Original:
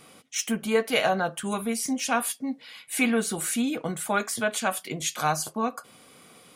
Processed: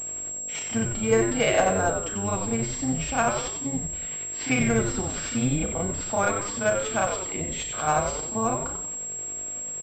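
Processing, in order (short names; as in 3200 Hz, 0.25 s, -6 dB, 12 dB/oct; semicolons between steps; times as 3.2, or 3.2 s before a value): octaver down 1 oct, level -5 dB; bell 620 Hz +4 dB 0.62 oct; bit-crush 8-bit; buzz 50 Hz, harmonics 14, -50 dBFS 0 dB/oct; granular stretch 1.5×, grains 0.188 s; on a send: frequency-shifting echo 93 ms, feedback 46%, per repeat -100 Hz, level -6 dB; on the sum: pulse-width modulation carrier 7600 Hz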